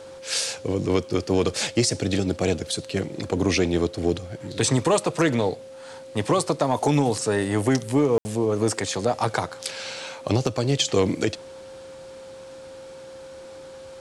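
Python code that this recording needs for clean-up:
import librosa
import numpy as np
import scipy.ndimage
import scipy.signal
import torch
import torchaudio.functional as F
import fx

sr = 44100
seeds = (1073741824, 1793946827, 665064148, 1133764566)

y = fx.notch(x, sr, hz=530.0, q=30.0)
y = fx.fix_ambience(y, sr, seeds[0], print_start_s=13.46, print_end_s=13.96, start_s=8.18, end_s=8.25)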